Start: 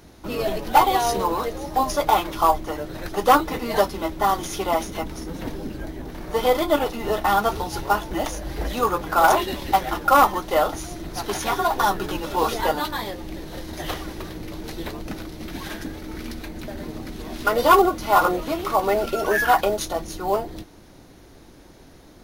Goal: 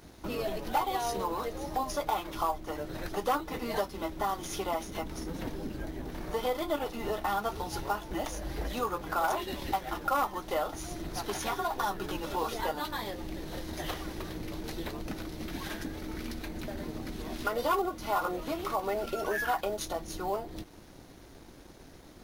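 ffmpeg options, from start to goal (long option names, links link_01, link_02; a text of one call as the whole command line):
ffmpeg -i in.wav -af "acompressor=threshold=-34dB:ratio=2,aeval=exprs='sgn(val(0))*max(abs(val(0))-0.00141,0)':channel_layout=same,volume=-1.5dB" out.wav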